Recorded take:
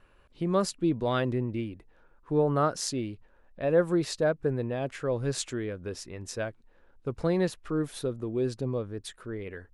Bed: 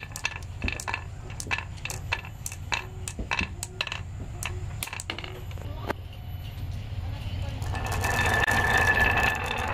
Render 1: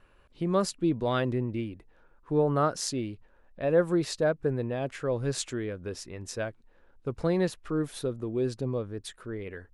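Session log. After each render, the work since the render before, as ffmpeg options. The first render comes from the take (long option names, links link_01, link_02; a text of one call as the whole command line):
ffmpeg -i in.wav -af anull out.wav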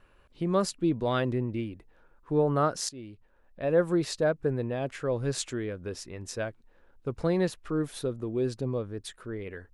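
ffmpeg -i in.wav -filter_complex "[0:a]asplit=2[link_01][link_02];[link_01]atrim=end=2.89,asetpts=PTS-STARTPTS,afade=type=out:start_time=2.886:duration=0.004:curve=hsin:silence=0.16788[link_03];[link_02]atrim=start=2.89,asetpts=PTS-STARTPTS,afade=type=in:duration=1.16:curve=qsin:silence=0.16788[link_04];[link_03][link_04]concat=n=2:v=0:a=1" out.wav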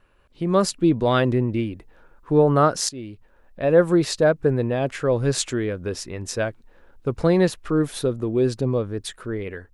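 ffmpeg -i in.wav -af "dynaudnorm=framelen=180:gausssize=5:maxgain=8.5dB" out.wav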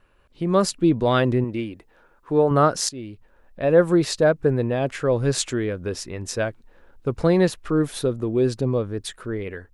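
ffmpeg -i in.wav -filter_complex "[0:a]asettb=1/sr,asplit=3[link_01][link_02][link_03];[link_01]atrim=end=1.444[link_04];[link_02]atrim=start=1.44:end=2.51,asetpts=PTS-STARTPTS,afade=type=in:duration=0.004:curve=qsin,afade=type=out:start_time=1.066:duration=0.004:curve=qsin,lowshelf=frequency=180:gain=-10[link_05];[link_03]atrim=start=2.506[link_06];[link_04][link_05]acrossfade=duration=0.004:curve1=hsin:curve2=qsin[link_07];[link_07][link_06]acrossfade=duration=0.004:curve1=qsin:curve2=hsin" out.wav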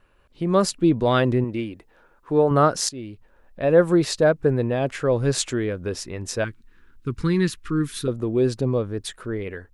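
ffmpeg -i in.wav -filter_complex "[0:a]asettb=1/sr,asplit=3[link_01][link_02][link_03];[link_01]atrim=end=6.444[link_04];[link_02]atrim=start=6.44:end=8.08,asetpts=PTS-STARTPTS,afade=type=in:duration=0.004:curve=qsin,afade=type=out:start_time=1.636:duration=0.004:curve=qsin,asuperstop=centerf=640:order=4:qfactor=0.75[link_05];[link_03]atrim=start=8.076[link_06];[link_04][link_05]acrossfade=duration=0.004:curve1=hsin:curve2=qsin[link_07];[link_07][link_06]acrossfade=duration=0.004:curve1=qsin:curve2=hsin" out.wav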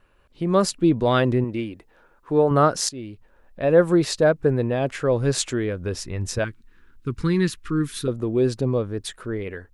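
ffmpeg -i in.wav -filter_complex "[0:a]asettb=1/sr,asplit=3[link_01][link_02][link_03];[link_01]atrim=end=5.634[link_04];[link_02]atrim=start=5.63:end=6.39,asetpts=PTS-STARTPTS,afade=type=in:duration=0.004:curve=qsin,afade=type=out:start_time=0.756:duration=0.004:curve=qsin,asubboost=boost=9.5:cutoff=190[link_05];[link_03]atrim=start=6.386[link_06];[link_04][link_05]acrossfade=duration=0.004:curve1=hsin:curve2=qsin[link_07];[link_07][link_06]acrossfade=duration=0.004:curve1=qsin:curve2=hsin" out.wav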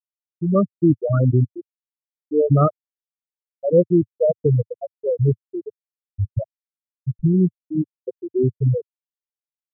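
ffmpeg -i in.wav -af "afftfilt=real='re*gte(hypot(re,im),0.631)':imag='im*gte(hypot(re,im),0.631)':win_size=1024:overlap=0.75,equalizer=frequency=110:width_type=o:width=1.5:gain=11.5" out.wav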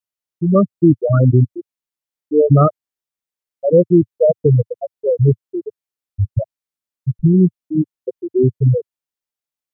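ffmpeg -i in.wav -af "volume=5dB,alimiter=limit=-2dB:level=0:latency=1" out.wav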